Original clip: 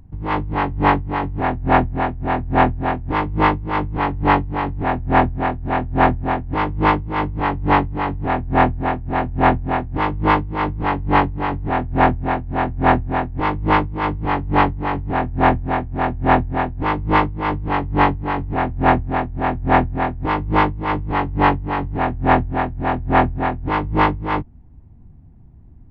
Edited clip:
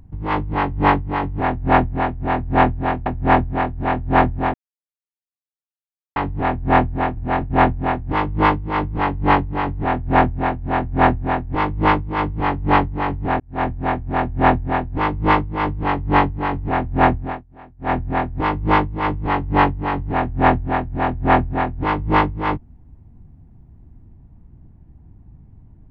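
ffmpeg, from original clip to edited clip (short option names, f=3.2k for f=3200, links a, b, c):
-filter_complex "[0:a]asplit=9[a][b][c][d][e][f][g][h][i];[a]atrim=end=3.062[j];[b]atrim=start=4.908:end=6.39,asetpts=PTS-STARTPTS,afade=t=out:st=1.478:d=0.004:c=hsin[k];[c]atrim=start=6.39:end=8.01,asetpts=PTS-STARTPTS,volume=0[l];[d]atrim=start=8.01:end=9.022,asetpts=PTS-STARTPTS,afade=t=in:d=0.004:c=hsin[m];[e]atrim=start=9.018:end=9.352,asetpts=PTS-STARTPTS,areverse[n];[f]atrim=start=9.348:end=15.25,asetpts=PTS-STARTPTS,afade=t=out:st=5.898:d=0.004:c=hsin[o];[g]atrim=start=15.25:end=19.29,asetpts=PTS-STARTPTS,afade=t=in:d=0.5,afade=t=out:st=3.75:d=0.29:silence=0.0794328[p];[h]atrim=start=19.29:end=19.63,asetpts=PTS-STARTPTS,volume=-22dB[q];[i]atrim=start=19.63,asetpts=PTS-STARTPTS,afade=t=in:d=0.29:silence=0.0794328[r];[k][l][m]concat=n=3:v=0:a=1[s];[j][s]acrossfade=d=0.004:c1=hsin:c2=hsin[t];[t][n]acrossfade=d=0.004:c1=hsin:c2=hsin[u];[o][p][q][r]concat=n=4:v=0:a=1[v];[u][v]acrossfade=d=0.004:c1=hsin:c2=hsin"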